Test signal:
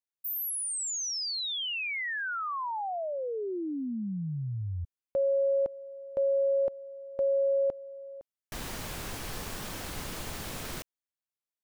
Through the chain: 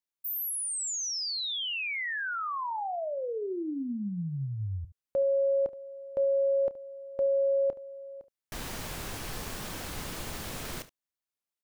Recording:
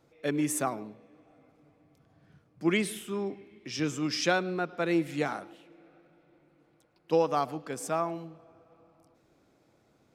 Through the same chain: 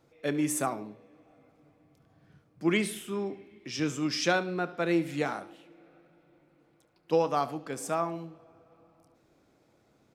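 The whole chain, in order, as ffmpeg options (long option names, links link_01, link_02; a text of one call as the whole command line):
ffmpeg -i in.wav -af "aecho=1:1:29|72:0.15|0.141" out.wav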